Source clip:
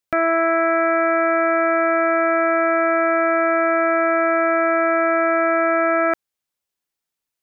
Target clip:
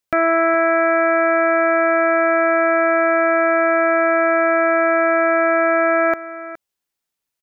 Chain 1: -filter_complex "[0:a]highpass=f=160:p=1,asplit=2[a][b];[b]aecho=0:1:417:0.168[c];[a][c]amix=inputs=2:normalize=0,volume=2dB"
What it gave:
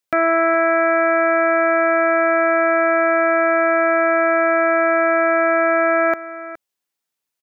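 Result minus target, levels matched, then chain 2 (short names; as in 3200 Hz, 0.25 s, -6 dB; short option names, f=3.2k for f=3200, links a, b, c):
125 Hz band -4.0 dB
-filter_complex "[0:a]asplit=2[a][b];[b]aecho=0:1:417:0.168[c];[a][c]amix=inputs=2:normalize=0,volume=2dB"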